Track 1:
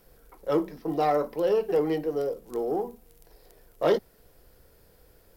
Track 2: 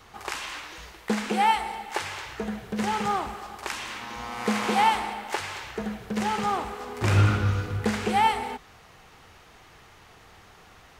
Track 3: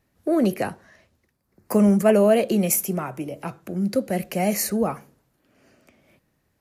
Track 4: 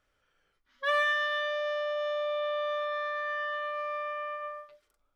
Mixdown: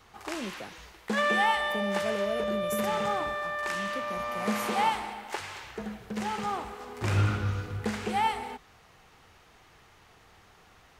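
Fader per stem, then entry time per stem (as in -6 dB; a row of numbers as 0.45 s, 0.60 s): mute, -5.5 dB, -17.5 dB, 0.0 dB; mute, 0.00 s, 0.00 s, 0.30 s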